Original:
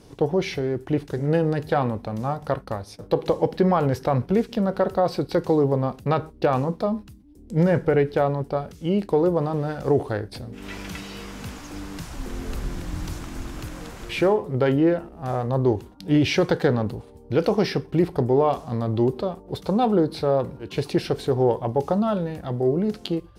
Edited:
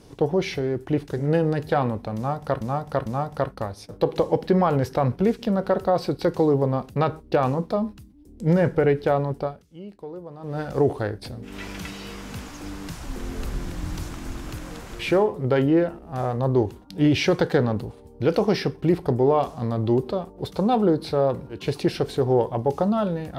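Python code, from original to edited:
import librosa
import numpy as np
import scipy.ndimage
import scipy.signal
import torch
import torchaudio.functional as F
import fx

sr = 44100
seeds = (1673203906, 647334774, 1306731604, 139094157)

y = fx.edit(x, sr, fx.repeat(start_s=2.16, length_s=0.45, count=3),
    fx.fade_down_up(start_s=8.52, length_s=1.17, db=-17.0, fade_s=0.26, curve='qua'), tone=tone)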